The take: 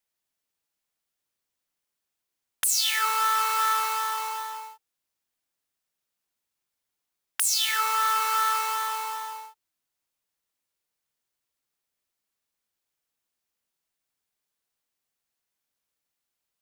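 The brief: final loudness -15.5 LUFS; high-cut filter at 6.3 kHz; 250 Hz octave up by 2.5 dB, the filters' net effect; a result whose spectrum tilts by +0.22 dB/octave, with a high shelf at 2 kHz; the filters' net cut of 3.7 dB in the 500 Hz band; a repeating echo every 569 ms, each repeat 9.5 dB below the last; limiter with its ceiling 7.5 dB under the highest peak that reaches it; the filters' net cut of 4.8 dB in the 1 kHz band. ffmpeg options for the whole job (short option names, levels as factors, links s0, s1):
-af "lowpass=6300,equalizer=f=250:t=o:g=5,equalizer=f=500:t=o:g=-4.5,equalizer=f=1000:t=o:g=-8.5,highshelf=f=2000:g=5,alimiter=limit=0.126:level=0:latency=1,aecho=1:1:569|1138|1707|2276:0.335|0.111|0.0365|0.012,volume=3.98"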